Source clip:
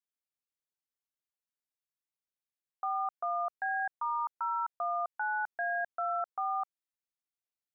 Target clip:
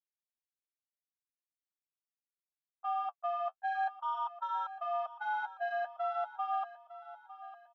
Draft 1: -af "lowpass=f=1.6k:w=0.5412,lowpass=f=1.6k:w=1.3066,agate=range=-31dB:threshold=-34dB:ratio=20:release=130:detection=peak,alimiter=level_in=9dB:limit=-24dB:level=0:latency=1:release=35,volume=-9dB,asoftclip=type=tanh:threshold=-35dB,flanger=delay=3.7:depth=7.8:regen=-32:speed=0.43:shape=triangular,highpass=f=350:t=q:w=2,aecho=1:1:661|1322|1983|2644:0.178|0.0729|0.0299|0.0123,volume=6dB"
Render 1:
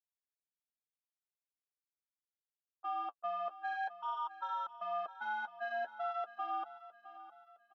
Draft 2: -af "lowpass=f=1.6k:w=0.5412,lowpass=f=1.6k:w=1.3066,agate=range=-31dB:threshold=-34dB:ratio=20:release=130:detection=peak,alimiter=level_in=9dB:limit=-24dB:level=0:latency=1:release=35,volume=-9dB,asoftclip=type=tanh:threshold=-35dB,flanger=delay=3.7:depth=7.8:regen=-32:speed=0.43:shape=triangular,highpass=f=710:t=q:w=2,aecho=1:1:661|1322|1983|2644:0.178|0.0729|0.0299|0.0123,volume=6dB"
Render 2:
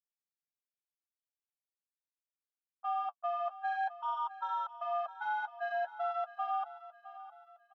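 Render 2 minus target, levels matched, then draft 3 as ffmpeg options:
echo 0.244 s early
-af "lowpass=f=1.6k:w=0.5412,lowpass=f=1.6k:w=1.3066,agate=range=-31dB:threshold=-34dB:ratio=20:release=130:detection=peak,alimiter=level_in=9dB:limit=-24dB:level=0:latency=1:release=35,volume=-9dB,asoftclip=type=tanh:threshold=-35dB,flanger=delay=3.7:depth=7.8:regen=-32:speed=0.43:shape=triangular,highpass=f=710:t=q:w=2,aecho=1:1:905|1810|2715|3620:0.178|0.0729|0.0299|0.0123,volume=6dB"

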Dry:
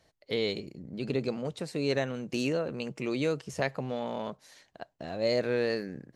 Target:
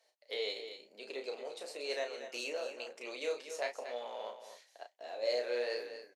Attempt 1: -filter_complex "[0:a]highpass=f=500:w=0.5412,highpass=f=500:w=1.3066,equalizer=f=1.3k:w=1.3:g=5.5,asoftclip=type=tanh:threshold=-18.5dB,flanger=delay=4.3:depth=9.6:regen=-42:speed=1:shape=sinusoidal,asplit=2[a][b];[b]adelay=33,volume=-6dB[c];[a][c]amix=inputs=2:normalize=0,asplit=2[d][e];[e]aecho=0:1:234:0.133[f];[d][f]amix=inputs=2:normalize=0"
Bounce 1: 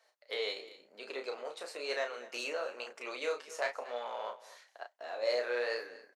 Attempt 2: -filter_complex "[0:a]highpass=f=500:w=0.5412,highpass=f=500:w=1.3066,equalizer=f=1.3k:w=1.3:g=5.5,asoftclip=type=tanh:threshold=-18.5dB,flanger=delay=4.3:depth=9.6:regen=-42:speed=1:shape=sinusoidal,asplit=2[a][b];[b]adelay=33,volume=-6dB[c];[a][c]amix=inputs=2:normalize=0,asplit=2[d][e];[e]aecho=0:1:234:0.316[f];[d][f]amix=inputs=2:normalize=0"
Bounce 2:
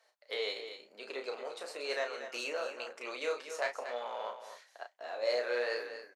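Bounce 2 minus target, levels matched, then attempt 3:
1000 Hz band +3.0 dB
-filter_complex "[0:a]highpass=f=500:w=0.5412,highpass=f=500:w=1.3066,equalizer=f=1.3k:w=1.3:g=-6,asoftclip=type=tanh:threshold=-18.5dB,flanger=delay=4.3:depth=9.6:regen=-42:speed=1:shape=sinusoidal,asplit=2[a][b];[b]adelay=33,volume=-6dB[c];[a][c]amix=inputs=2:normalize=0,asplit=2[d][e];[e]aecho=0:1:234:0.316[f];[d][f]amix=inputs=2:normalize=0"

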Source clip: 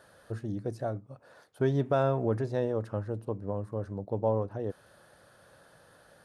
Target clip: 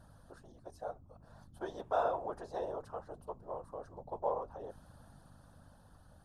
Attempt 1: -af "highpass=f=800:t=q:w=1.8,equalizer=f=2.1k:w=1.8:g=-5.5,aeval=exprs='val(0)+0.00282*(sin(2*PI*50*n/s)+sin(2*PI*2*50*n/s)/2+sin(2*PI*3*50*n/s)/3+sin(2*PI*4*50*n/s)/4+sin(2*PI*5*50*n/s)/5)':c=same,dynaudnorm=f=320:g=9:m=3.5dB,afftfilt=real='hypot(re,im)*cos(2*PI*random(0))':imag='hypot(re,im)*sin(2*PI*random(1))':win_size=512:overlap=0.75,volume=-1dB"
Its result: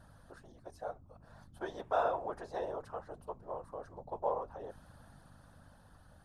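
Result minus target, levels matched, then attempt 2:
2000 Hz band +3.0 dB
-af "highpass=f=800:t=q:w=1.8,equalizer=f=2.1k:w=1.8:g=-14,aeval=exprs='val(0)+0.00282*(sin(2*PI*50*n/s)+sin(2*PI*2*50*n/s)/2+sin(2*PI*3*50*n/s)/3+sin(2*PI*4*50*n/s)/4+sin(2*PI*5*50*n/s)/5)':c=same,dynaudnorm=f=320:g=9:m=3.5dB,afftfilt=real='hypot(re,im)*cos(2*PI*random(0))':imag='hypot(re,im)*sin(2*PI*random(1))':win_size=512:overlap=0.75,volume=-1dB"

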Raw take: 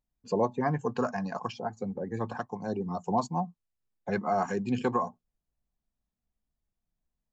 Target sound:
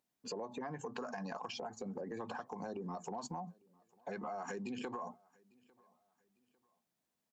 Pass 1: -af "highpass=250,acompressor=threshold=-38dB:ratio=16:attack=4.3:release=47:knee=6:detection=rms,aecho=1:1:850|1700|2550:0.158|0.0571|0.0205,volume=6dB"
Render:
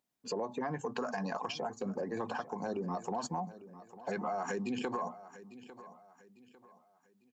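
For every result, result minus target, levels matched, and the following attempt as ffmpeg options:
echo-to-direct +11.5 dB; compressor: peak gain reduction -6.5 dB
-af "highpass=250,acompressor=threshold=-38dB:ratio=16:attack=4.3:release=47:knee=6:detection=rms,aecho=1:1:850|1700:0.0422|0.0152,volume=6dB"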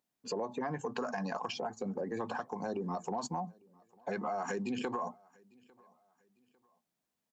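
compressor: peak gain reduction -6.5 dB
-af "highpass=250,acompressor=threshold=-45dB:ratio=16:attack=4.3:release=47:knee=6:detection=rms,aecho=1:1:850|1700:0.0422|0.0152,volume=6dB"

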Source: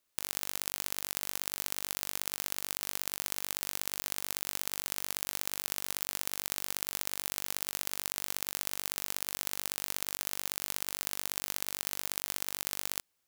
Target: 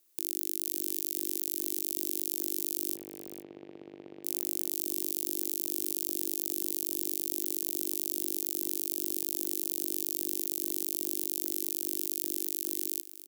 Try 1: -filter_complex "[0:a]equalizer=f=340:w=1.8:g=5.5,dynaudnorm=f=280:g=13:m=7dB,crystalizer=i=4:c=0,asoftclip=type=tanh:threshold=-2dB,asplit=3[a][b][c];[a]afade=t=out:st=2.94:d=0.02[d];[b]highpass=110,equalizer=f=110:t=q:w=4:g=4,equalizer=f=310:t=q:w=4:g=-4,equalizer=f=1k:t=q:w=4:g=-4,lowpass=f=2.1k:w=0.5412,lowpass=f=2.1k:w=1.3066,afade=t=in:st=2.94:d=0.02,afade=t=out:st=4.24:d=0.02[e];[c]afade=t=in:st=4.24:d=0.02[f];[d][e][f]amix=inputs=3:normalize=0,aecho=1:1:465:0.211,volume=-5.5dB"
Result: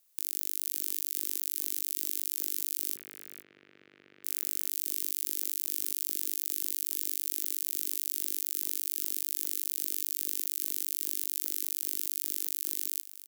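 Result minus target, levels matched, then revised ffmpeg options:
250 Hz band -15.0 dB
-filter_complex "[0:a]equalizer=f=340:w=1.8:g=17.5,dynaudnorm=f=280:g=13:m=7dB,crystalizer=i=4:c=0,asoftclip=type=tanh:threshold=-2dB,asplit=3[a][b][c];[a]afade=t=out:st=2.94:d=0.02[d];[b]highpass=110,equalizer=f=110:t=q:w=4:g=4,equalizer=f=310:t=q:w=4:g=-4,equalizer=f=1k:t=q:w=4:g=-4,lowpass=f=2.1k:w=0.5412,lowpass=f=2.1k:w=1.3066,afade=t=in:st=2.94:d=0.02,afade=t=out:st=4.24:d=0.02[e];[c]afade=t=in:st=4.24:d=0.02[f];[d][e][f]amix=inputs=3:normalize=0,aecho=1:1:465:0.211,volume=-5.5dB"

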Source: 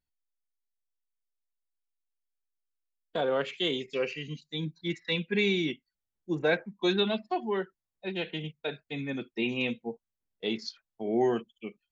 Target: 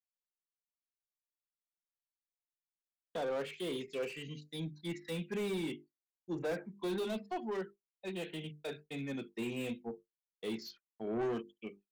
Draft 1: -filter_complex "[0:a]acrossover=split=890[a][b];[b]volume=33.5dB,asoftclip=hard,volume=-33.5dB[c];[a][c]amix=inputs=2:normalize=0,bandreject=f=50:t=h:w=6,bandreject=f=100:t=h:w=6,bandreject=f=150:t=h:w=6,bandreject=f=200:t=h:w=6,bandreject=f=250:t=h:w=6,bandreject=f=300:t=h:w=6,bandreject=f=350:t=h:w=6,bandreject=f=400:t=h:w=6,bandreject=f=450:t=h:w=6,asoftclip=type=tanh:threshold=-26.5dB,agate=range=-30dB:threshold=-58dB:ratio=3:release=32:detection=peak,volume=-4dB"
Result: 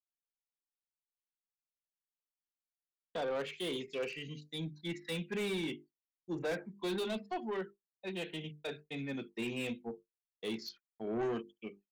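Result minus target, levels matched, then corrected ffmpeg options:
overloaded stage: distortion -4 dB
-filter_complex "[0:a]acrossover=split=890[a][b];[b]volume=40dB,asoftclip=hard,volume=-40dB[c];[a][c]amix=inputs=2:normalize=0,bandreject=f=50:t=h:w=6,bandreject=f=100:t=h:w=6,bandreject=f=150:t=h:w=6,bandreject=f=200:t=h:w=6,bandreject=f=250:t=h:w=6,bandreject=f=300:t=h:w=6,bandreject=f=350:t=h:w=6,bandreject=f=400:t=h:w=6,bandreject=f=450:t=h:w=6,asoftclip=type=tanh:threshold=-26.5dB,agate=range=-30dB:threshold=-58dB:ratio=3:release=32:detection=peak,volume=-4dB"

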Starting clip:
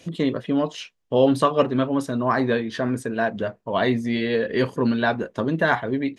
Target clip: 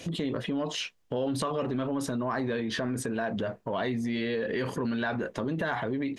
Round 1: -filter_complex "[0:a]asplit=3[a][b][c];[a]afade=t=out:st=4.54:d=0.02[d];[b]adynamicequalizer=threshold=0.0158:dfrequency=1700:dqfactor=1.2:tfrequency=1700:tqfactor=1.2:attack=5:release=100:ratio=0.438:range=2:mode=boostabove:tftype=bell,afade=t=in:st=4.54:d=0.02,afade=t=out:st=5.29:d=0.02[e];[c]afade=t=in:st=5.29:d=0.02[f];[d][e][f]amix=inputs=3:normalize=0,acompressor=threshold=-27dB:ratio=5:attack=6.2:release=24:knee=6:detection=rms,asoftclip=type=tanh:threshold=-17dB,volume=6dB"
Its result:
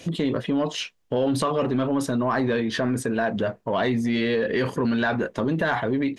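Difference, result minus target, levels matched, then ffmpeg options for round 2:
compressor: peak gain reduction -7.5 dB
-filter_complex "[0:a]asplit=3[a][b][c];[a]afade=t=out:st=4.54:d=0.02[d];[b]adynamicequalizer=threshold=0.0158:dfrequency=1700:dqfactor=1.2:tfrequency=1700:tqfactor=1.2:attack=5:release=100:ratio=0.438:range=2:mode=boostabove:tftype=bell,afade=t=in:st=4.54:d=0.02,afade=t=out:st=5.29:d=0.02[e];[c]afade=t=in:st=5.29:d=0.02[f];[d][e][f]amix=inputs=3:normalize=0,acompressor=threshold=-36.5dB:ratio=5:attack=6.2:release=24:knee=6:detection=rms,asoftclip=type=tanh:threshold=-17dB,volume=6dB"

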